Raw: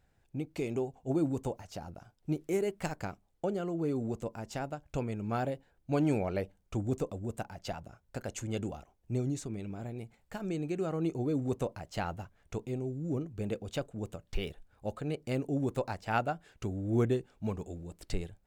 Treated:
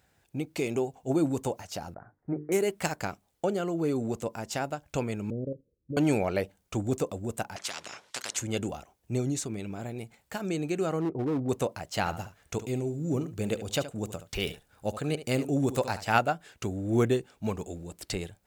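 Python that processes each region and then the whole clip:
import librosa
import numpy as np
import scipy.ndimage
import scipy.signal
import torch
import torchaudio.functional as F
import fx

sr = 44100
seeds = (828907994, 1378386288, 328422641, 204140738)

y = fx.chain(x, sr, fx.ellip_lowpass(hz=1900.0, order=4, stop_db=40),
    fx.hum_notches(base_hz=50, count=9), at=(1.94, 2.52))
y = fx.chain(y, sr, fx.steep_lowpass(hz=530.0, slope=72),
    fx.low_shelf(hz=72.0, db=2.0),
    fx.level_steps(step_db=12), at=(5.3, 5.97))
y = fx.chain(y, sr, fx.bandpass_edges(low_hz=480.0, high_hz=4800.0),
    fx.spectral_comp(ratio=4.0), at=(7.56, 8.37))
y = fx.chain(y, sr, fx.gaussian_blur(sigma=6.9),
    fx.clip_hard(threshold_db=-28.5), at=(11.0, 11.49))
y = fx.chain(y, sr, fx.bass_treble(bass_db=2, treble_db=3),
    fx.echo_single(ms=72, db=-13.0), at=(11.99, 16.19))
y = scipy.signal.sosfilt(scipy.signal.butter(2, 50.0, 'highpass', fs=sr, output='sos'), y)
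y = fx.tilt_eq(y, sr, slope=1.5)
y = y * librosa.db_to_amplitude(6.5)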